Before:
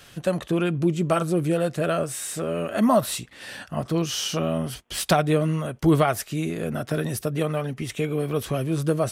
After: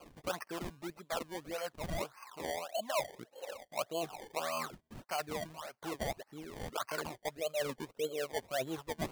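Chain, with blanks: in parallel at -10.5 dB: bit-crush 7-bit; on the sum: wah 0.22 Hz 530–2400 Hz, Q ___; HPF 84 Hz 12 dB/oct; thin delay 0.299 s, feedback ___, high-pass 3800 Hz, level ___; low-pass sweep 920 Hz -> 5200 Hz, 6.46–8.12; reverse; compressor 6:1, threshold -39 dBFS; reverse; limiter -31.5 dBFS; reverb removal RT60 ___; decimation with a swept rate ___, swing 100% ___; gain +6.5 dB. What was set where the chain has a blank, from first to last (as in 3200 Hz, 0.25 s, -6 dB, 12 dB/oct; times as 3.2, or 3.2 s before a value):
4.6, 43%, -20 dB, 1.1 s, 23×, 1.7 Hz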